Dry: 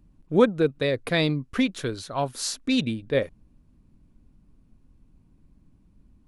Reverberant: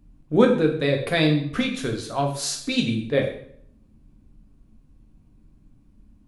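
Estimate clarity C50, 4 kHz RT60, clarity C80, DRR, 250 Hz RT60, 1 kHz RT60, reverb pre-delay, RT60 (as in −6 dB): 7.5 dB, 0.55 s, 11.0 dB, 1.0 dB, 0.70 s, 0.60 s, 5 ms, 0.60 s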